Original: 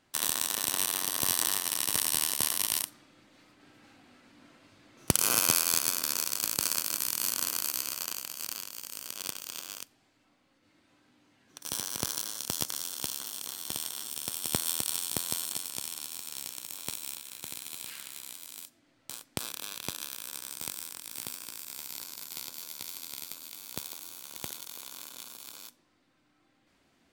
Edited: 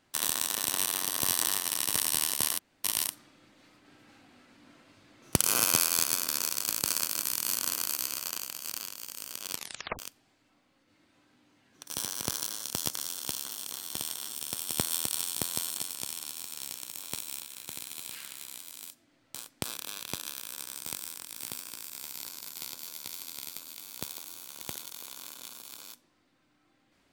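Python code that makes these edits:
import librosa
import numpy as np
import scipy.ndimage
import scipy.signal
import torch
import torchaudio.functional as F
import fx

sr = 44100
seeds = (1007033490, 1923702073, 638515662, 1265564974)

y = fx.edit(x, sr, fx.insert_room_tone(at_s=2.59, length_s=0.25),
    fx.tape_stop(start_s=9.27, length_s=0.47), tone=tone)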